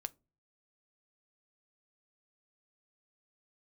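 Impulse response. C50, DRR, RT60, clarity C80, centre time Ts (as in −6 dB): 27.0 dB, 12.5 dB, non-exponential decay, 34.5 dB, 2 ms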